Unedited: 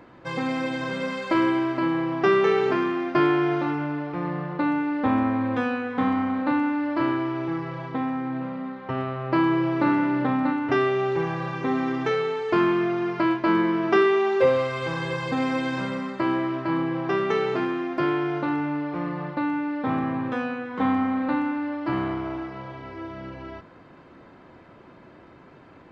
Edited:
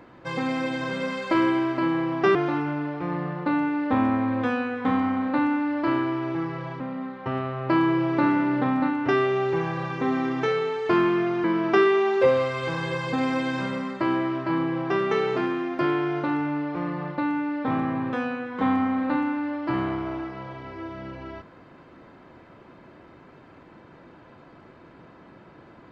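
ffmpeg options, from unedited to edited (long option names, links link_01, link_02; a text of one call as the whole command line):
ffmpeg -i in.wav -filter_complex "[0:a]asplit=4[link_01][link_02][link_03][link_04];[link_01]atrim=end=2.352[link_05];[link_02]atrim=start=3.478:end=7.932[link_06];[link_03]atrim=start=8.428:end=13.072[link_07];[link_04]atrim=start=13.628[link_08];[link_05][link_06]acrossfade=duration=0.004:curve1=hsin:curve2=hsin[link_09];[link_09][link_07]acrossfade=duration=0.004:curve1=hsin:curve2=hsin[link_10];[link_10][link_08]acrossfade=duration=0.004:curve1=hsin:curve2=hsin" out.wav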